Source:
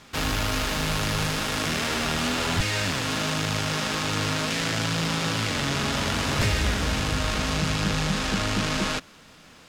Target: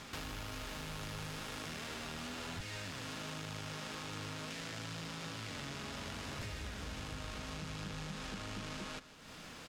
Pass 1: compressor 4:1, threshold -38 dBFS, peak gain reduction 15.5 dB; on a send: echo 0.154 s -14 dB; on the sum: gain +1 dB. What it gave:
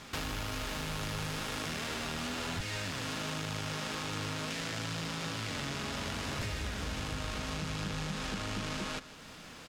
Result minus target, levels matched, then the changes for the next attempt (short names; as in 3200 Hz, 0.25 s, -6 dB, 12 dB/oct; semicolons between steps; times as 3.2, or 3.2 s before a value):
compressor: peak gain reduction -6.5 dB
change: compressor 4:1, threshold -47 dBFS, peak gain reduction 22 dB